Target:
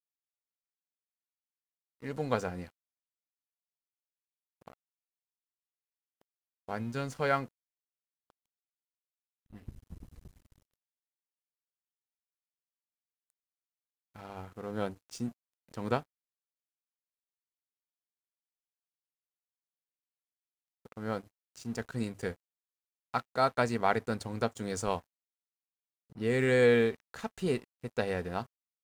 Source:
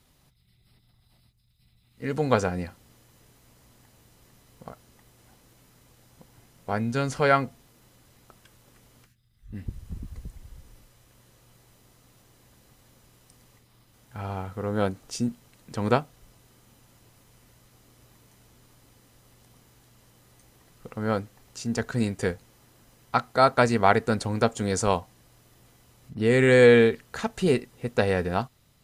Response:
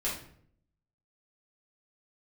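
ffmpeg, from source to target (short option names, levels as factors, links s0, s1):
-af "bandreject=f=50:t=h:w=6,bandreject=f=100:t=h:w=6,aeval=exprs='sgn(val(0))*max(abs(val(0))-0.00668,0)':c=same,volume=0.398"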